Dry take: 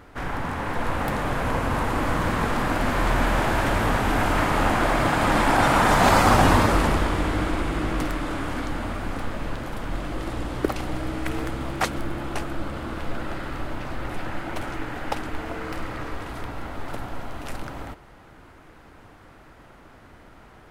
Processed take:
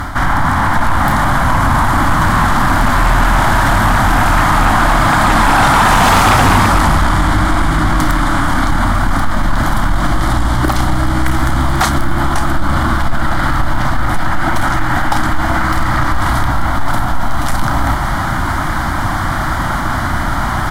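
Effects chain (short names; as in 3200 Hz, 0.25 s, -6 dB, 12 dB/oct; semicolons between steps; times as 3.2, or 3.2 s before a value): bell 2800 Hz +10.5 dB 0.77 oct; doubler 32 ms -11 dB; reverse; upward compressor, threshold -22 dBFS; reverse; fixed phaser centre 1100 Hz, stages 4; in parallel at +1 dB: compressor, threshold -30 dBFS, peak gain reduction 15.5 dB; on the sum: sine folder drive 8 dB, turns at -4 dBFS; maximiser +7.5 dB; gain -4 dB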